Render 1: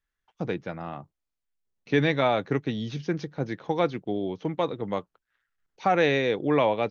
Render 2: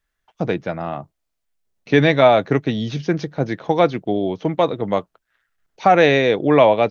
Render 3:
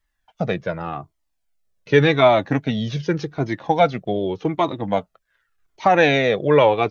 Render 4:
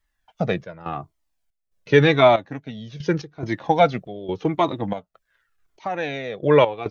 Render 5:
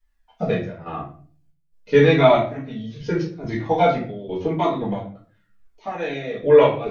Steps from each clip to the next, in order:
bell 650 Hz +6 dB 0.27 oct; gain +8 dB
cascading flanger falling 0.86 Hz; gain +4 dB
step gate "xxx.xxx.xxx...x." 70 bpm -12 dB
shoebox room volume 36 m³, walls mixed, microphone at 1.7 m; gain -10.5 dB

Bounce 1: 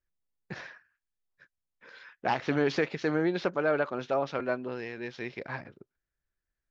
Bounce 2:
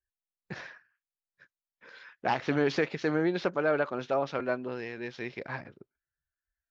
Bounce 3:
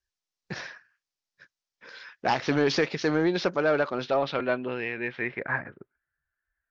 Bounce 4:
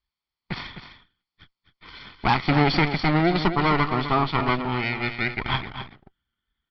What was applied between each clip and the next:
spectral noise reduction 19 dB
in parallel at -4.5 dB: soft clip -23.5 dBFS, distortion -13 dB; on the sum: low-pass sweep 5600 Hz -> 1700 Hz, 3.79–5.47
minimum comb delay 0.91 ms; downsampling 11025 Hz; echo 0.256 s -10 dB; gain +5.5 dB

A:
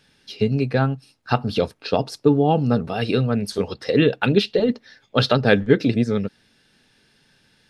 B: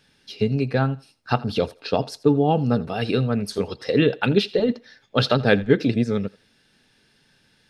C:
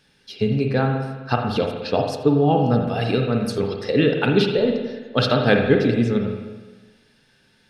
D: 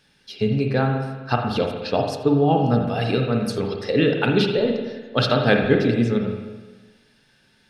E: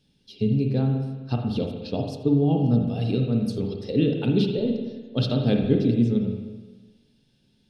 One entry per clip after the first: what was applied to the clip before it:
thinning echo 83 ms, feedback 25%, high-pass 430 Hz, level -20 dB; gain -1.5 dB
spring tank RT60 1.3 s, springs 42/52 ms, chirp 45 ms, DRR 2.5 dB
notches 50/100/150/200/250/300/350/400/450/500 Hz
EQ curve 260 Hz 0 dB, 1700 Hz -22 dB, 3200 Hz -7 dB, 7200 Hz -10 dB

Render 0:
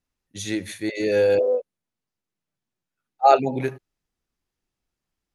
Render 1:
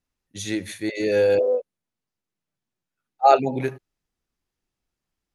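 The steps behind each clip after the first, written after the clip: nothing audible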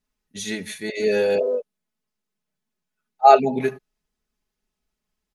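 comb 4.7 ms, depth 75%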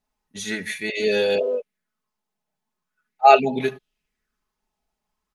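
LFO bell 0.41 Hz 780–3500 Hz +12 dB; gain -1 dB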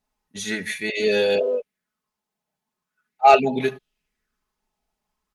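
added harmonics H 5 -26 dB, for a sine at -1 dBFS; gain -1 dB

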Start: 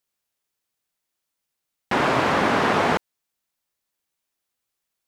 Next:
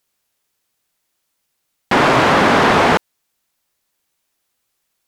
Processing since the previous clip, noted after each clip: sine folder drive 6 dB, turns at -7.5 dBFS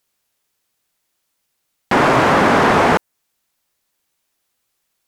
dynamic EQ 3700 Hz, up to -5 dB, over -35 dBFS, Q 0.99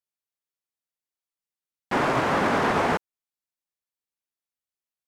upward expander 2.5:1, over -22 dBFS; gain -8.5 dB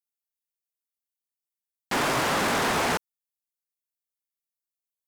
pre-emphasis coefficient 0.8; sample leveller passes 3; gain +5 dB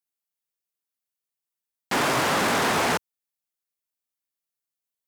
HPF 73 Hz; gain +2 dB

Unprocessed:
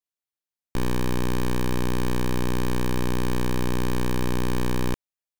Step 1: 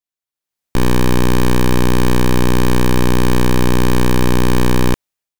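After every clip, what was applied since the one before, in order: AGC gain up to 11.5 dB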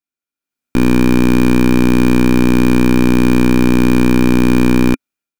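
small resonant body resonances 260/1400/2400 Hz, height 13 dB, ringing for 30 ms; gain -3 dB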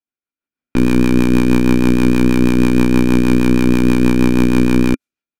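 low-pass opened by the level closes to 2600 Hz, open at -11.5 dBFS; rotary speaker horn 6.3 Hz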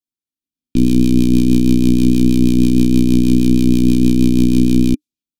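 EQ curve 300 Hz 0 dB, 690 Hz -23 dB, 1700 Hz -24 dB, 3300 Hz 0 dB; gain +1 dB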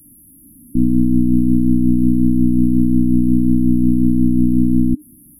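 delta modulation 64 kbps, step -31 dBFS; brick-wall FIR band-stop 340–10000 Hz; gain -1.5 dB

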